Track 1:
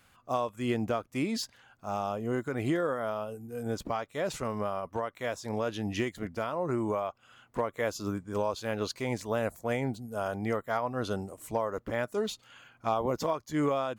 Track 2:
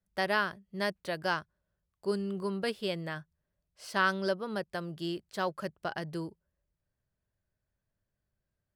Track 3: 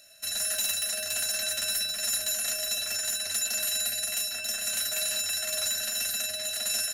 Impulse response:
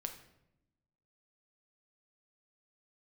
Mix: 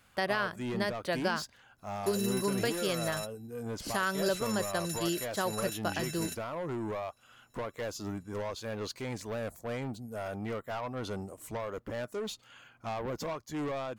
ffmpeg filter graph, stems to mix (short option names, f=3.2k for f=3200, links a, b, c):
-filter_complex "[0:a]asoftclip=type=tanh:threshold=-30.5dB,volume=-1dB[a];[1:a]volume=2.5dB,asplit=2[b][c];[2:a]adelay=1550,volume=-11dB[d];[c]apad=whole_len=374074[e];[d][e]sidechaingate=range=-33dB:threshold=-42dB:ratio=16:detection=peak[f];[a][b][f]amix=inputs=3:normalize=0,alimiter=limit=-20dB:level=0:latency=1:release=145"